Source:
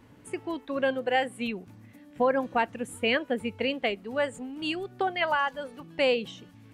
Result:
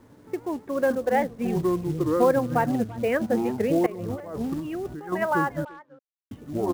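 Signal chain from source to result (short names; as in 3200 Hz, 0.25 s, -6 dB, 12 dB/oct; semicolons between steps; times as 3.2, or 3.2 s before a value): LPF 1900 Hz 24 dB/oct; bell 440 Hz +4.5 dB 1.7 oct; echoes that change speed 0.404 s, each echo -7 st, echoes 2; 1.19–2.39 low shelf 110 Hz +9 dB; companded quantiser 6-bit; 3.86–5.13 negative-ratio compressor -33 dBFS, ratio -1; 5.65–6.31 mute; speakerphone echo 0.34 s, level -19 dB; record warp 78 rpm, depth 160 cents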